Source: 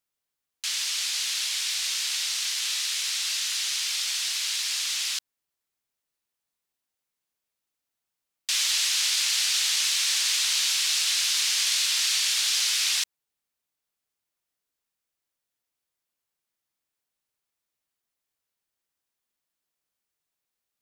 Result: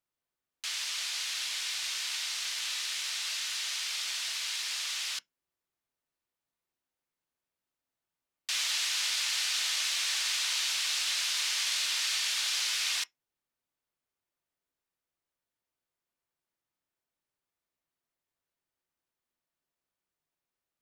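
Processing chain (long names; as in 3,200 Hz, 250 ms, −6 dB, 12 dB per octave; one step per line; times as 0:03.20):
high-shelf EQ 2,700 Hz −9 dB
on a send: convolution reverb RT60 0.15 s, pre-delay 3 ms, DRR 12 dB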